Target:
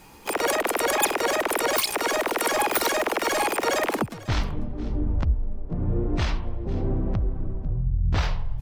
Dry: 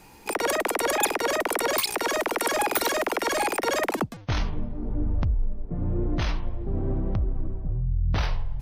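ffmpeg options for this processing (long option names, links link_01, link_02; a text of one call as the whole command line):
ffmpeg -i in.wav -filter_complex "[0:a]asplit=3[link_01][link_02][link_03];[link_02]asetrate=55563,aresample=44100,atempo=0.793701,volume=-16dB[link_04];[link_03]asetrate=58866,aresample=44100,atempo=0.749154,volume=-11dB[link_05];[link_01][link_04][link_05]amix=inputs=3:normalize=0,aecho=1:1:496:0.1,volume=1dB" out.wav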